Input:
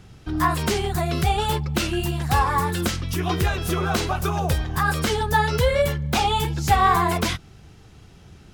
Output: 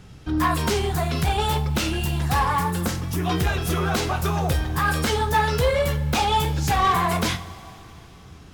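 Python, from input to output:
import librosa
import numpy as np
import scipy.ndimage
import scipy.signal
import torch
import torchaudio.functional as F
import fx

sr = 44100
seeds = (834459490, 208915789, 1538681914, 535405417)

y = fx.peak_eq(x, sr, hz=3300.0, db=-7.0, octaves=1.8, at=(2.63, 3.25))
y = 10.0 ** (-16.5 / 20.0) * np.tanh(y / 10.0 ** (-16.5 / 20.0))
y = fx.rev_double_slope(y, sr, seeds[0], early_s=0.32, late_s=3.5, knee_db=-18, drr_db=7.0)
y = y * 10.0 ** (1.0 / 20.0)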